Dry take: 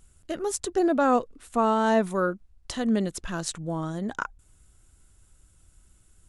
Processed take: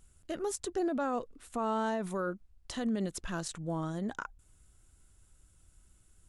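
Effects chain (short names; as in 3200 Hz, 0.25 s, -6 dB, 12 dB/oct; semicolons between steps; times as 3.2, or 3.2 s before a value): limiter -20.5 dBFS, peak gain reduction 10 dB; gain -4.5 dB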